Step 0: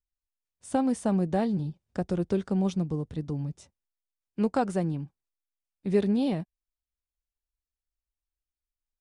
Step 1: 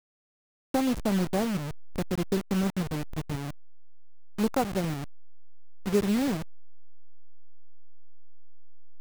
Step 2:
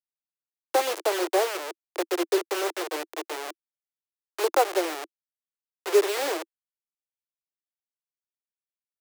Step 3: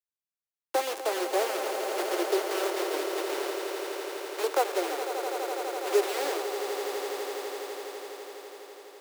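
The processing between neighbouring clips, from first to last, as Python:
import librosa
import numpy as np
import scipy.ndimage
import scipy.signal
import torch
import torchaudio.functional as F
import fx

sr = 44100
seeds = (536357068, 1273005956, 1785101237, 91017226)

y1 = fx.delta_hold(x, sr, step_db=-27.5)
y2 = scipy.signal.sosfilt(scipy.signal.butter(16, 330.0, 'highpass', fs=sr, output='sos'), y1)
y2 = y2 * 10.0 ** (7.0 / 20.0)
y3 = fx.echo_swell(y2, sr, ms=83, loudest=8, wet_db=-11)
y3 = y3 * 10.0 ** (-4.5 / 20.0)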